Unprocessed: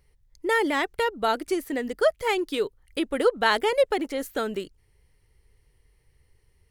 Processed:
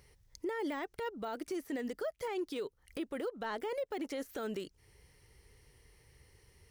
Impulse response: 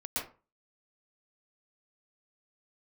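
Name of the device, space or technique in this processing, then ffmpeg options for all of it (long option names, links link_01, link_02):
broadcast voice chain: -af "highpass=frequency=100:poles=1,deesser=1,acompressor=threshold=-42dB:ratio=3,equalizer=frequency=5700:width_type=o:width=0.41:gain=5,alimiter=level_in=11.5dB:limit=-24dB:level=0:latency=1:release=42,volume=-11.5dB,volume=5.5dB"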